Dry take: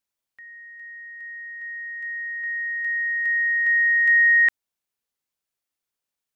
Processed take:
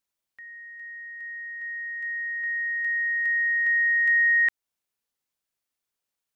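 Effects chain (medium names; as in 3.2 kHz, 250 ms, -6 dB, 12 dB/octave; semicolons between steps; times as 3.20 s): compression 1.5:1, threshold -26 dBFS, peak gain reduction 4 dB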